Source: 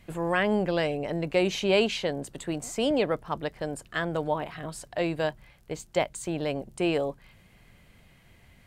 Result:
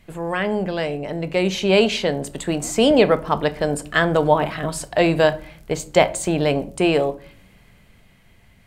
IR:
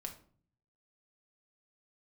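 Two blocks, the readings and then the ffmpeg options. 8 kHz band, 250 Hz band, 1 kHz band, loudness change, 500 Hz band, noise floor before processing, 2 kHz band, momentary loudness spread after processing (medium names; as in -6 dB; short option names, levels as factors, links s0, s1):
+10.0 dB, +8.5 dB, +9.5 dB, +8.5 dB, +9.0 dB, -58 dBFS, +8.0 dB, 10 LU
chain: -filter_complex "[0:a]dynaudnorm=f=230:g=17:m=3.76,asplit=2[s0][s1];[1:a]atrim=start_sample=2205[s2];[s1][s2]afir=irnorm=-1:irlink=0,volume=0.944[s3];[s0][s3]amix=inputs=2:normalize=0,volume=0.794"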